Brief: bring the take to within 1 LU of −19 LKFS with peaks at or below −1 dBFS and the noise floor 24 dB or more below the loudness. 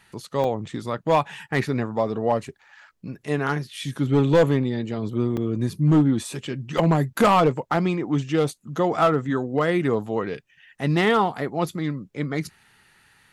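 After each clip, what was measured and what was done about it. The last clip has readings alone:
share of clipped samples 0.7%; peaks flattened at −11.5 dBFS; number of dropouts 3; longest dropout 2.5 ms; integrated loudness −23.5 LKFS; sample peak −11.5 dBFS; target loudness −19.0 LKFS
→ clipped peaks rebuilt −11.5 dBFS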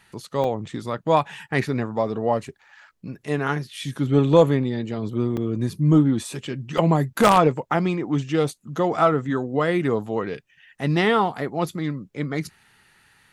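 share of clipped samples 0.0%; number of dropouts 3; longest dropout 2.5 ms
→ repair the gap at 0:00.44/0:05.37/0:06.78, 2.5 ms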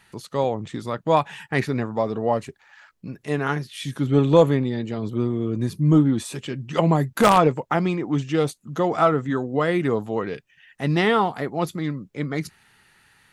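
number of dropouts 0; integrated loudness −22.5 LKFS; sample peak −2.5 dBFS; target loudness −19.0 LKFS
→ level +3.5 dB
brickwall limiter −1 dBFS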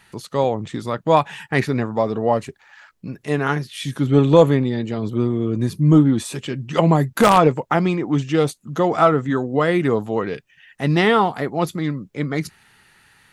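integrated loudness −19.5 LKFS; sample peak −1.0 dBFS; background noise floor −58 dBFS

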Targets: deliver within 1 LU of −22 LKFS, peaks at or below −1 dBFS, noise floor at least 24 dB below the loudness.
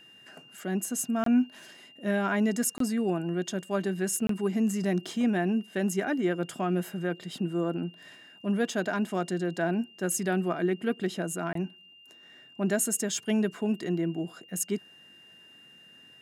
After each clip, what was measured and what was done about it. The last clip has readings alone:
number of dropouts 4; longest dropout 23 ms; interfering tone 2,800 Hz; level of the tone −52 dBFS; integrated loudness −29.5 LKFS; sample peak −14.5 dBFS; target loudness −22.0 LKFS
→ repair the gap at 0:01.24/0:02.78/0:04.27/0:11.53, 23 ms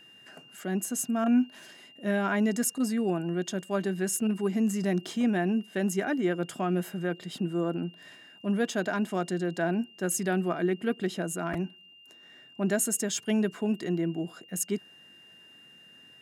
number of dropouts 0; interfering tone 2,800 Hz; level of the tone −52 dBFS
→ notch filter 2,800 Hz, Q 30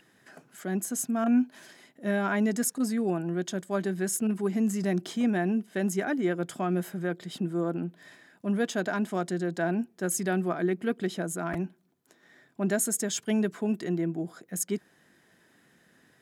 interfering tone none found; integrated loudness −29.5 LKFS; sample peak −14.5 dBFS; target loudness −22.0 LKFS
→ level +7.5 dB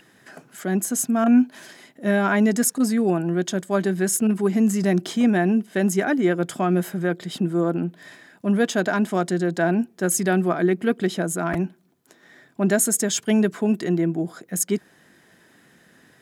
integrated loudness −22.0 LKFS; sample peak −7.0 dBFS; background noise floor −56 dBFS

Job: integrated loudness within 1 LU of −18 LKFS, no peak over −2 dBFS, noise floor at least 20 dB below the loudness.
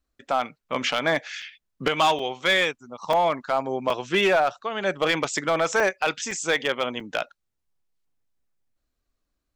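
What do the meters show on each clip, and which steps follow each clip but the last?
share of clipped samples 0.7%; peaks flattened at −14.0 dBFS; number of dropouts 7; longest dropout 3.4 ms; integrated loudness −24.0 LKFS; sample peak −14.0 dBFS; target loudness −18.0 LKFS
→ clipped peaks rebuilt −14 dBFS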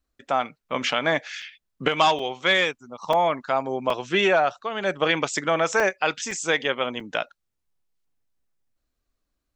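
share of clipped samples 0.0%; number of dropouts 7; longest dropout 3.4 ms
→ repair the gap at 0:01.42/0:02.19/0:03.13/0:03.90/0:05.80/0:06.31/0:07.00, 3.4 ms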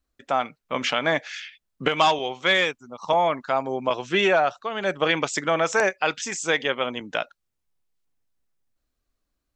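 number of dropouts 0; integrated loudness −23.5 LKFS; sample peak −5.5 dBFS; target loudness −18.0 LKFS
→ level +5.5 dB
brickwall limiter −2 dBFS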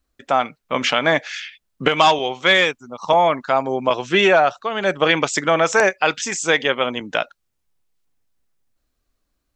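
integrated loudness −18.0 LKFS; sample peak −2.0 dBFS; background noise floor −74 dBFS

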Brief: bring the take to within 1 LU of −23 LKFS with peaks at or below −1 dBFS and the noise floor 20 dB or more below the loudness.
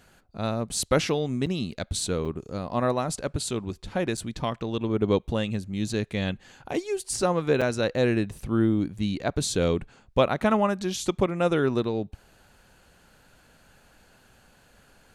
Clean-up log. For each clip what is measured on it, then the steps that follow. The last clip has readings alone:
number of dropouts 4; longest dropout 5.7 ms; integrated loudness −27.0 LKFS; sample peak −6.0 dBFS; target loudness −23.0 LKFS
→ repair the gap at 0:01.46/0:02.25/0:04.17/0:07.61, 5.7 ms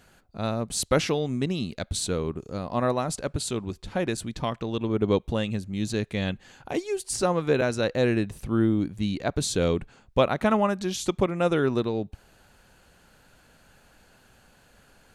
number of dropouts 0; integrated loudness −27.0 LKFS; sample peak −6.0 dBFS; target loudness −23.0 LKFS
→ level +4 dB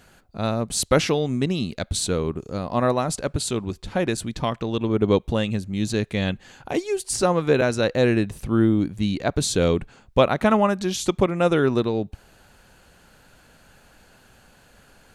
integrated loudness −23.0 LKFS; sample peak −2.0 dBFS; background noise floor −55 dBFS

